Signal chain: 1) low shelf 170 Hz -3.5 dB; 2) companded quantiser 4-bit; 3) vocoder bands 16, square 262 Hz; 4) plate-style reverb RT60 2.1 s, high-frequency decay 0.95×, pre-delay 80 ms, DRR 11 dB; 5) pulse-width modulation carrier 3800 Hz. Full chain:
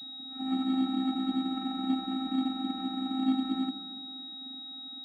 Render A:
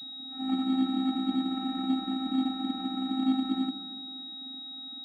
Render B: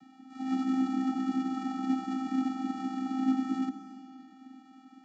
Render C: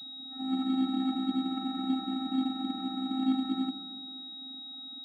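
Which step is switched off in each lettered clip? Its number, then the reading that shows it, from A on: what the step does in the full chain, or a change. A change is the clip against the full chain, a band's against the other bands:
1, loudness change +1.5 LU; 5, 4 kHz band -16.5 dB; 2, distortion -13 dB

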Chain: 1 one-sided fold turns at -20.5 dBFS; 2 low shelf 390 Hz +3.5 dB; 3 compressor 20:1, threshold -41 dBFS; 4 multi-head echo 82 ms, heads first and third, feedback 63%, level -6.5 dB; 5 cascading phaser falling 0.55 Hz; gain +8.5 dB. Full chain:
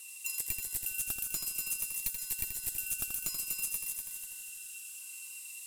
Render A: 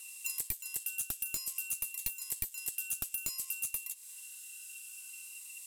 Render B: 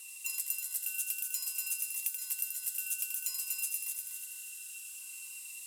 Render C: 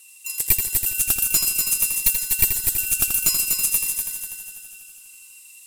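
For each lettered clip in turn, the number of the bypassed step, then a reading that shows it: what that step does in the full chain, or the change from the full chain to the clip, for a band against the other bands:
4, crest factor change +2.5 dB; 1, distortion -9 dB; 3, mean gain reduction 8.5 dB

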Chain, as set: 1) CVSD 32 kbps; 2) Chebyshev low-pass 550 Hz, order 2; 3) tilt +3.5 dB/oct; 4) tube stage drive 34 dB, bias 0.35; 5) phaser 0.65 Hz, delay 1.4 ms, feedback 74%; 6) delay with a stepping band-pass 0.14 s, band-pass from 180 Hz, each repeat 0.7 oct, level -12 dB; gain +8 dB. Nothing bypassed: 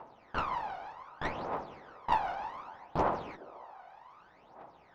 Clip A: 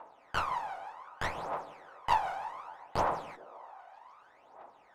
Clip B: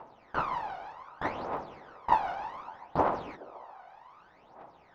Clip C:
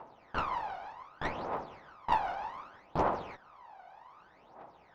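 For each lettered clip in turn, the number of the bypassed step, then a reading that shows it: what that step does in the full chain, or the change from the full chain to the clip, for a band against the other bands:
1, 250 Hz band -6.5 dB; 4, crest factor change +3.0 dB; 6, echo-to-direct -21.0 dB to none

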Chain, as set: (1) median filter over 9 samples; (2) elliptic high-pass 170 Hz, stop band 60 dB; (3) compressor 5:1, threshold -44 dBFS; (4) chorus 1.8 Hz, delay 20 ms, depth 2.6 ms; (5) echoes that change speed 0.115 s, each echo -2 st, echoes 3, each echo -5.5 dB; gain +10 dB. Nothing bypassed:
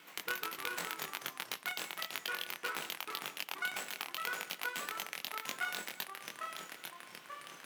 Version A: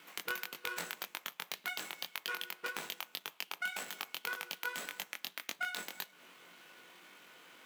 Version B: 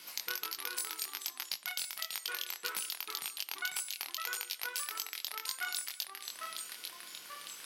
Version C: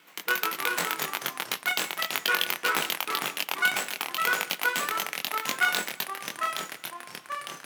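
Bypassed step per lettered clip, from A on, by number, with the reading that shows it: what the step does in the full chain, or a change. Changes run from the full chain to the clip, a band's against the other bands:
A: 5, momentary loudness spread change +10 LU; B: 1, 8 kHz band +10.5 dB; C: 3, mean gain reduction 8.0 dB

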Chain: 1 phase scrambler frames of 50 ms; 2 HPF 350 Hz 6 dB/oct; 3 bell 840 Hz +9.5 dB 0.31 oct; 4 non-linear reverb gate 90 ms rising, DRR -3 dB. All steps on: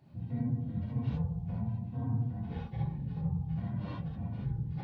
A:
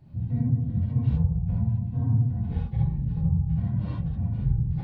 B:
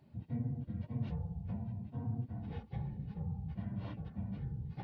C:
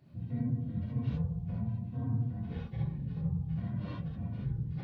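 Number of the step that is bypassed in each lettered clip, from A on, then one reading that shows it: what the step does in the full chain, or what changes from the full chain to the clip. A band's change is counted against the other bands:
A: 2, loudness change +9.5 LU; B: 4, momentary loudness spread change -1 LU; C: 3, 1 kHz band -4.0 dB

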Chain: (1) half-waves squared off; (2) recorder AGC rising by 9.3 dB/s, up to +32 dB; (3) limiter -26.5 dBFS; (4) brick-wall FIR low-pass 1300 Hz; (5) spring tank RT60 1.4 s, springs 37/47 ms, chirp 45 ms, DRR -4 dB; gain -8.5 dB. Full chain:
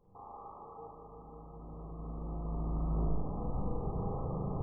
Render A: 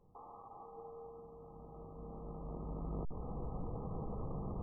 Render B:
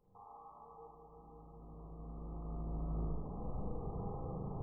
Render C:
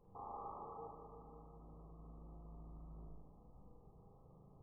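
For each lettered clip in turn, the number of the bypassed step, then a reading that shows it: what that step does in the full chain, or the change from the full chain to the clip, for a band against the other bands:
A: 5, momentary loudness spread change -5 LU; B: 1, distortion -5 dB; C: 2, crest factor change +2.5 dB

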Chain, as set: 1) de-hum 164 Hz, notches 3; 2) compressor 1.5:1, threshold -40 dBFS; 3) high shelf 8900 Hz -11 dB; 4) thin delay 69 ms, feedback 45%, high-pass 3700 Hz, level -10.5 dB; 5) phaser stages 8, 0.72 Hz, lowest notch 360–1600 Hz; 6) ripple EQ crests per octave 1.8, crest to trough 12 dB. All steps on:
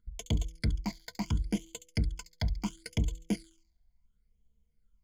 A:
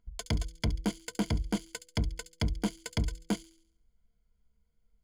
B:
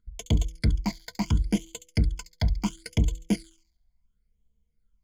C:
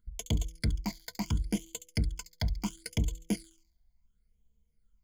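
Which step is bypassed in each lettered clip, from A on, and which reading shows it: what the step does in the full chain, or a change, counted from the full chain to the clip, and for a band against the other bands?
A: 5, 125 Hz band -3.5 dB; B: 2, mean gain reduction 5.5 dB; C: 3, 8 kHz band +4.0 dB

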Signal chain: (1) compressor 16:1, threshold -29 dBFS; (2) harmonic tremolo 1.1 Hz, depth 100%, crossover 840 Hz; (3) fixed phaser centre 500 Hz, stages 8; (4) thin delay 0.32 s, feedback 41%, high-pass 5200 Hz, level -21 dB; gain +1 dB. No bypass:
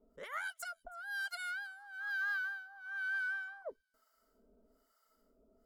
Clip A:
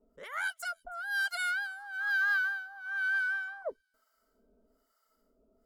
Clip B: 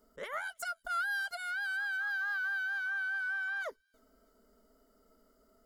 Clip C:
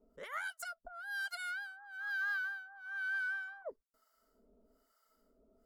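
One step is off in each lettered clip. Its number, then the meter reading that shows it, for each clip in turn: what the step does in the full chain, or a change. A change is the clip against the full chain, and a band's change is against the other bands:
1, mean gain reduction 7.0 dB; 2, momentary loudness spread change -5 LU; 4, echo-to-direct -38.0 dB to none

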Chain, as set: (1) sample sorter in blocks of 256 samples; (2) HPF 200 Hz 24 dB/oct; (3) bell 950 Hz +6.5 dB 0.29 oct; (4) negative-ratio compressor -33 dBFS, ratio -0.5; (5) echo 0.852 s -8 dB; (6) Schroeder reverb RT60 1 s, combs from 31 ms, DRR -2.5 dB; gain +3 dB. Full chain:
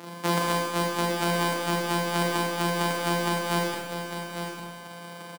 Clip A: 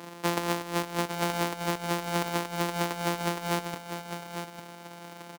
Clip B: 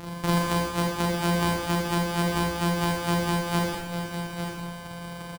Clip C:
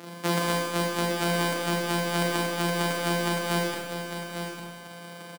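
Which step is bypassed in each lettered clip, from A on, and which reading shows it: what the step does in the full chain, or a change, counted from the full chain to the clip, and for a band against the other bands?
6, echo-to-direct 3.5 dB to -8.0 dB; 2, 125 Hz band +6.0 dB; 3, 1 kHz band -3.0 dB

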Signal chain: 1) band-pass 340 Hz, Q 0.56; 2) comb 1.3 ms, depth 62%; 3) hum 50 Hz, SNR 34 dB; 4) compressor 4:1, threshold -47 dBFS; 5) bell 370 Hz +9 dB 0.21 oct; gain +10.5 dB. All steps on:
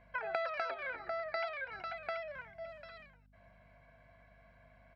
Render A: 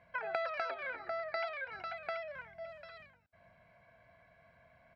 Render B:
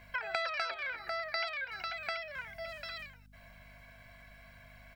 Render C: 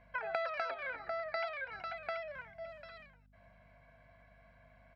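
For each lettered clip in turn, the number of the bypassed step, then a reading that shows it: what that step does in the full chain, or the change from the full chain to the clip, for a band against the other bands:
3, 125 Hz band -3.0 dB; 1, 4 kHz band +10.5 dB; 5, 250 Hz band -1.5 dB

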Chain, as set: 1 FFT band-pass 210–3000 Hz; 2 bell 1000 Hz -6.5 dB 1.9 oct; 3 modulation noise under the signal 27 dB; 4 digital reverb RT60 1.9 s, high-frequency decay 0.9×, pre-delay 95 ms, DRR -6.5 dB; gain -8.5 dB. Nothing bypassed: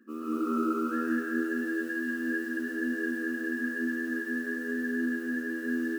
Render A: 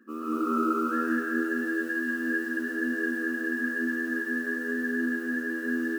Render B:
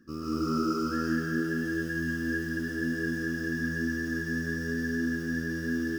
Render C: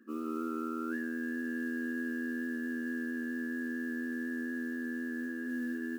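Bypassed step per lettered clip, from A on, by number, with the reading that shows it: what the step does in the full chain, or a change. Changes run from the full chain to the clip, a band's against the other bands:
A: 2, 1 kHz band +3.5 dB; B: 1, 8 kHz band +6.0 dB; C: 4, 250 Hz band +3.0 dB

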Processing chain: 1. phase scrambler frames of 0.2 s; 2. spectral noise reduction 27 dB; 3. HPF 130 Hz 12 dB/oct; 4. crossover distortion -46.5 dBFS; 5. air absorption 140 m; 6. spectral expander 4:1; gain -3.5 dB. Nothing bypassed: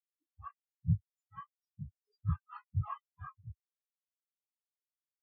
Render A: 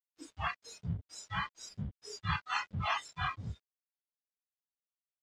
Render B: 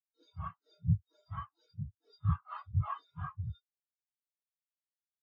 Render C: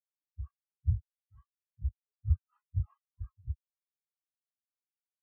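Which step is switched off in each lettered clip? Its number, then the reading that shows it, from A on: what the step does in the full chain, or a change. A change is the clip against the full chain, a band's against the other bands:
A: 6, 2 kHz band +23.5 dB; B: 2, 250 Hz band -3.0 dB; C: 3, momentary loudness spread change -4 LU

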